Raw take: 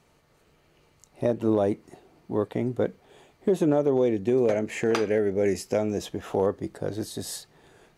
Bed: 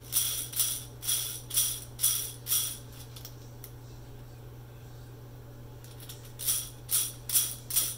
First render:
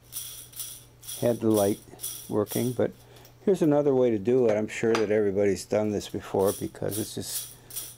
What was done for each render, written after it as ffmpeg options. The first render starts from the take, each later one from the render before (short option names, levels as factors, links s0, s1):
-filter_complex "[1:a]volume=0.376[s0];[0:a][s0]amix=inputs=2:normalize=0"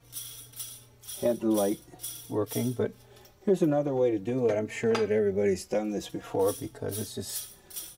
-filter_complex "[0:a]asplit=2[s0][s1];[s1]adelay=3.8,afreqshift=-0.48[s2];[s0][s2]amix=inputs=2:normalize=1"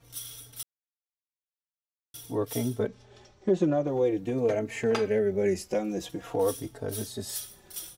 -filter_complex "[0:a]asettb=1/sr,asplit=3[s0][s1][s2];[s0]atrim=end=2.874[s3];[s1]atrim=start=2.87:end=3.87,asetpts=PTS-STARTPTS,afade=t=in:d=0.004:c=qsin,afade=t=out:st=0.996:d=0.004:c=qsin,lowpass=f=7100:w=0.5412,lowpass=f=7100:w=1.3066[s4];[s2]atrim=start=3.866[s5];[s3][s4]acrossfade=d=0.004:c1=hsin:c2=qsin[s6];[s6][s5]acrossfade=d=0.004:c1=qsin:c2=hsin,asplit=3[s7][s8][s9];[s7]atrim=end=0.63,asetpts=PTS-STARTPTS,afade=t=out:st=0.626:d=0.004:c=hsin[s10];[s8]atrim=start=0.63:end=2.14,asetpts=PTS-STARTPTS,volume=0[s11];[s9]atrim=start=2.14,asetpts=PTS-STARTPTS,afade=t=in:d=0.004:c=hsin[s12];[s10][s11][s12]concat=n=3:v=0:a=1"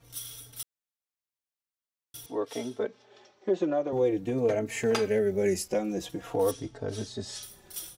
-filter_complex "[0:a]asettb=1/sr,asplit=3[s0][s1][s2];[s0]atrim=end=2.264[s3];[s1]atrim=start=2.26:end=3.93,asetpts=PTS-STARTPTS,afade=t=in:d=0.004:c=qsin,afade=t=out:st=1.666:d=0.004:c=qsin,highpass=330,lowpass=5600[s4];[s2]atrim=start=3.926[s5];[s3][s4]acrossfade=d=0.004:c1=hsin:c2=qsin[s6];[s6][s5]acrossfade=d=0.004:c1=qsin:c2=hsin,asettb=1/sr,asplit=3[s7][s8][s9];[s7]atrim=end=4.664[s10];[s8]atrim=start=4.66:end=5.68,asetpts=PTS-STARTPTS,afade=t=in:d=0.004:c=qsin,afade=t=out:st=1.016:d=0.004:c=qsin,aemphasis=mode=production:type=cd[s11];[s9]atrim=start=5.676[s12];[s10][s11]acrossfade=d=0.004:c1=hsin:c2=qsin[s13];[s13][s12]acrossfade=d=0.004:c1=qsin:c2=hsin,asettb=1/sr,asplit=3[s14][s15][s16];[s14]atrim=end=6.514[s17];[s15]atrim=start=6.51:end=7.43,asetpts=PTS-STARTPTS,afade=t=in:d=0.004:c=qsin,afade=t=out:st=0.916:d=0.004:c=qsin,lowpass=f=7000:w=0.5412,lowpass=f=7000:w=1.3066[s18];[s16]atrim=start=7.426[s19];[s17][s18]acrossfade=d=0.004:c1=hsin:c2=qsin[s20];[s20][s19]acrossfade=d=0.004:c1=qsin:c2=hsin"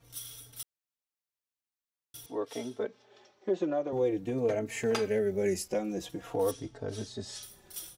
-af "volume=0.708"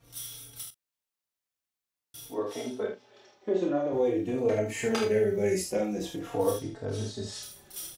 -filter_complex "[0:a]asplit=2[s0][s1];[s1]adelay=39,volume=0.2[s2];[s0][s2]amix=inputs=2:normalize=0,aecho=1:1:28|49|76:0.668|0.447|0.501"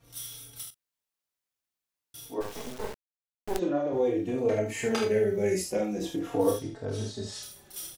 -filter_complex "[0:a]asplit=3[s0][s1][s2];[s0]afade=t=out:st=2.4:d=0.02[s3];[s1]acrusher=bits=4:dc=4:mix=0:aa=0.000001,afade=t=in:st=2.4:d=0.02,afade=t=out:st=3.58:d=0.02[s4];[s2]afade=t=in:st=3.58:d=0.02[s5];[s3][s4][s5]amix=inputs=3:normalize=0,asettb=1/sr,asplit=3[s6][s7][s8];[s6]atrim=end=6.024[s9];[s7]atrim=start=6.02:end=6.55,asetpts=PTS-STARTPTS,afade=t=in:d=0.004:c=qsin,afade=t=out:st=0.526:d=0.004:c=qsin,equalizer=f=300:t=o:w=0.77:g=6[s10];[s8]atrim=start=6.546[s11];[s9][s10]acrossfade=d=0.004:c1=hsin:c2=qsin[s12];[s12][s11]acrossfade=d=0.004:c1=qsin:c2=hsin"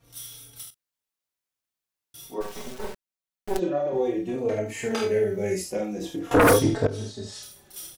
-filter_complex "[0:a]asettb=1/sr,asplit=3[s0][s1][s2];[s0]atrim=end=2.194[s3];[s1]atrim=start=2.19:end=4.36,asetpts=PTS-STARTPTS,afade=t=in:d=0.004:c=qsin,afade=t=out:st=2.166:d=0.004:c=qsin,aecho=1:1:5.3:0.68,atrim=end_sample=95697[s4];[s2]atrim=start=4.356[s5];[s3][s4]acrossfade=d=0.004:c1=hsin:c2=qsin[s6];[s6][s5]acrossfade=d=0.004:c1=qsin:c2=hsin,asettb=1/sr,asplit=3[s7][s8][s9];[s7]atrim=end=4.884[s10];[s8]atrim=start=4.88:end=5.55,asetpts=PTS-STARTPTS,afade=t=in:d=0.004:c=qsin,afade=t=out:st=0.666:d=0.004:c=qsin,asplit=2[s11][s12];[s12]adelay=21,volume=0.376[s13];[s11][s13]amix=inputs=2:normalize=0,atrim=end_sample=29547[s14];[s9]atrim=start=5.546[s15];[s10][s14]acrossfade=d=0.004:c1=hsin:c2=qsin[s16];[s16][s15]acrossfade=d=0.004:c1=qsin:c2=hsin,asettb=1/sr,asplit=3[s17][s18][s19];[s17]atrim=end=6.314[s20];[s18]atrim=start=6.31:end=6.87,asetpts=PTS-STARTPTS,afade=t=in:d=0.004:c=qsin,afade=t=out:st=0.556:d=0.004:c=qsin,aeval=exprs='0.251*sin(PI/2*3.98*val(0)/0.251)':c=same[s21];[s19]atrim=start=6.866[s22];[s20][s21]acrossfade=d=0.004:c1=hsin:c2=qsin[s23];[s23][s22]acrossfade=d=0.004:c1=qsin:c2=hsin"